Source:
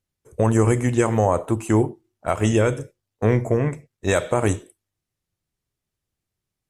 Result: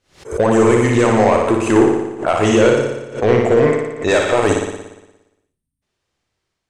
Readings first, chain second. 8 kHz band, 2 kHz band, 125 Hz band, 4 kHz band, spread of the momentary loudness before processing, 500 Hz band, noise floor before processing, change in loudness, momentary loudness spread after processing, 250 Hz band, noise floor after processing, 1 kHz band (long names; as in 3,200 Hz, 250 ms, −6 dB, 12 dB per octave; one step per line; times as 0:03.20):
+4.0 dB, +9.0 dB, −0.5 dB, +10.5 dB, 11 LU, +9.0 dB, −84 dBFS, +6.5 dB, 8 LU, +6.5 dB, −78 dBFS, +8.0 dB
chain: bass and treble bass −11 dB, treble +2 dB
time-frequency box erased 0:05.26–0:05.82, 280–8,200 Hz
automatic gain control gain up to 4.5 dB
in parallel at +1 dB: brickwall limiter −13 dBFS, peak gain reduction 9 dB
on the sum: hard clipping −8.5 dBFS, distortion −14 dB
high-frequency loss of the air 94 metres
on a send: flutter between parallel walls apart 10 metres, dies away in 1 s
on the sum: background raised ahead of every attack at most 150 dB per second
level +1 dB